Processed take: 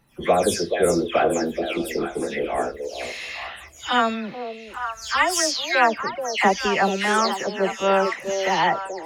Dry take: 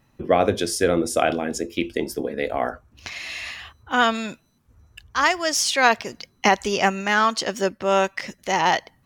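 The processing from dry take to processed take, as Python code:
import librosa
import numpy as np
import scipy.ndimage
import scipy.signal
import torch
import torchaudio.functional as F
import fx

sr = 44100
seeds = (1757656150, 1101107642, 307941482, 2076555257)

p1 = fx.spec_delay(x, sr, highs='early', ms=236)
y = p1 + fx.echo_stepped(p1, sr, ms=429, hz=440.0, octaves=1.4, feedback_pct=70, wet_db=-3.5, dry=0)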